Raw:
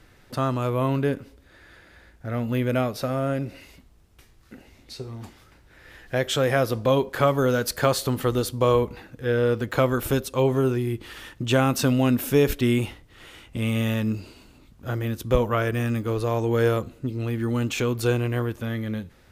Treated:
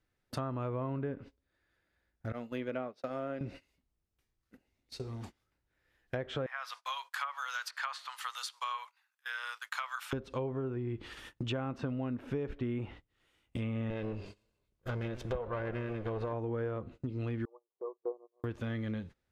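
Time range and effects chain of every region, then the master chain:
0:02.32–0:03.41: high-pass filter 240 Hz + downward expander −25 dBFS
0:06.46–0:10.13: Butterworth high-pass 970 Hz + high-shelf EQ 7,400 Hz +7.5 dB
0:13.90–0:16.33: lower of the sound and its delayed copy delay 1.9 ms + feedback echo with a swinging delay time 125 ms, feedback 50%, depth 145 cents, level −17 dB
0:17.45–0:18.44: linear-phase brick-wall band-pass 350–1,200 Hz + expander for the loud parts 2.5 to 1, over −36 dBFS
whole clip: noise gate −40 dBFS, range −22 dB; treble cut that deepens with the level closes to 1,700 Hz, closed at −21 dBFS; downward compressor, threshold −28 dBFS; level −5 dB

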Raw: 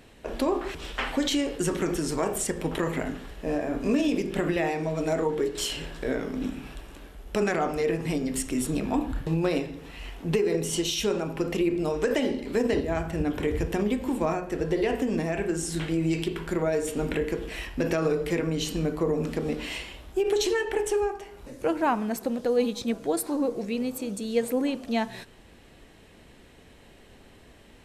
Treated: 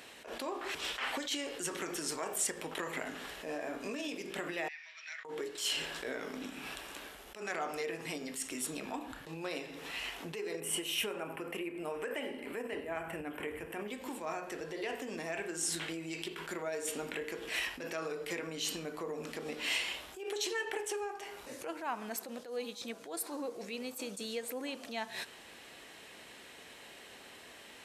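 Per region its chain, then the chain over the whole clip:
0:04.68–0:05.25: elliptic band-pass filter 1,800–5,700 Hz, stop band 70 dB + spectral tilt −4.5 dB per octave
0:10.60–0:13.88: flat-topped bell 5,000 Hz −14.5 dB 1.2 octaves + single-tap delay 100 ms −18 dB
whole clip: downward compressor, threshold −34 dBFS; high-pass filter 1,100 Hz 6 dB per octave; level that may rise only so fast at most 120 dB per second; level +6.5 dB

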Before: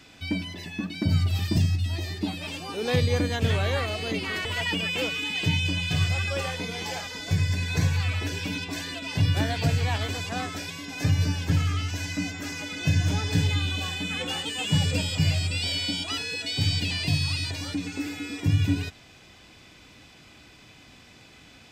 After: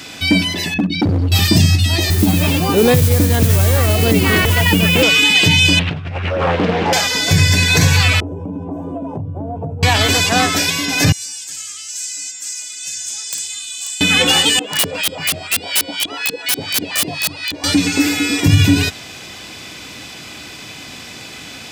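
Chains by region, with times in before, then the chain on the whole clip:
0:00.74–0:01.32: spectral envelope exaggerated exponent 2 + hard clipping −26 dBFS
0:02.10–0:05.03: RIAA equalisation playback + downward compressor, threshold −23 dBFS + noise that follows the level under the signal 21 dB
0:05.79–0:06.93: low-pass filter 1,200 Hz + compressor whose output falls as the input rises −33 dBFS + highs frequency-modulated by the lows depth 0.52 ms
0:08.20–0:09.83: inverse Chebyshev low-pass filter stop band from 1,700 Hz + downward compressor, threshold −36 dBFS
0:11.12–0:14.01: resonant band-pass 7,800 Hz, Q 3.5 + wrap-around overflow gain 33.5 dB
0:14.59–0:17.64: auto-filter band-pass saw up 4.1 Hz 250–3,700 Hz + wrap-around overflow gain 29 dB
whole clip: high-pass filter 140 Hz 6 dB per octave; high-shelf EQ 4,700 Hz +7 dB; boost into a limiter +18 dB; level −1 dB

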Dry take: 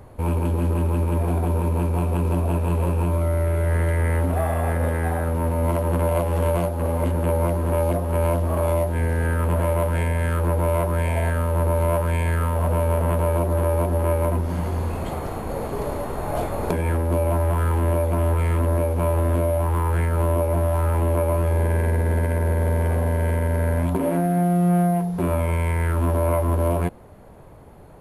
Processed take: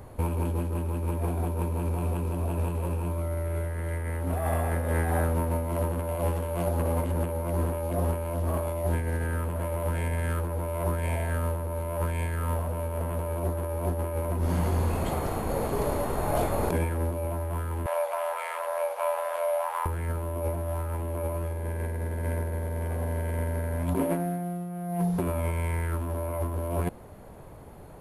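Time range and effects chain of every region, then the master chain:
0:17.86–0:19.86: Butterworth high-pass 570 Hz 48 dB per octave + high-shelf EQ 8,100 Hz −10.5 dB
whole clip: high-shelf EQ 6,200 Hz +5 dB; compressor whose output falls as the input rises −23 dBFS, ratio −0.5; level −4 dB

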